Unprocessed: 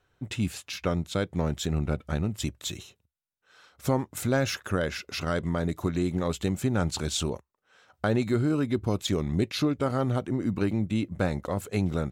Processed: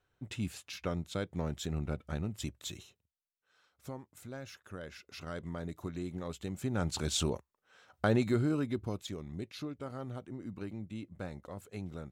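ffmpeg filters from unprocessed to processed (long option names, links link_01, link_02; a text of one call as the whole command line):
ffmpeg -i in.wav -af "volume=9dB,afade=type=out:start_time=2.73:duration=1.27:silence=0.266073,afade=type=in:start_time=4.59:duration=0.9:silence=0.421697,afade=type=in:start_time=6.48:duration=0.74:silence=0.334965,afade=type=out:start_time=8.12:duration=1.03:silence=0.237137" out.wav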